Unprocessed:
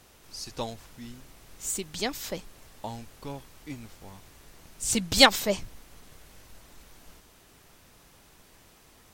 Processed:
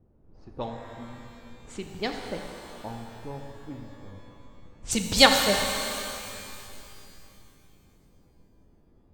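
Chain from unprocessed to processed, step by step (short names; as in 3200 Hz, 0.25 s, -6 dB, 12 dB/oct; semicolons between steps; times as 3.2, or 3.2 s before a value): low-pass opened by the level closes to 310 Hz, open at -23 dBFS; shimmer reverb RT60 2.7 s, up +12 st, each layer -8 dB, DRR 3.5 dB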